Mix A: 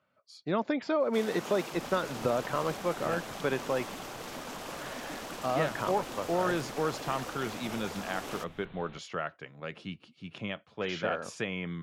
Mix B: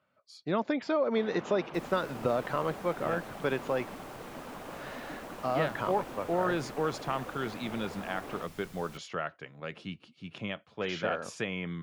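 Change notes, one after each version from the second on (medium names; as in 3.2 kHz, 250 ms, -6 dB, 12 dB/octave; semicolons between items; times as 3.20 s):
first sound: add distance through air 480 m; second sound: remove steep low-pass 3.9 kHz 96 dB/octave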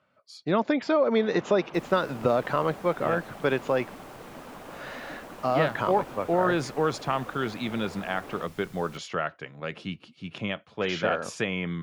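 speech +5.5 dB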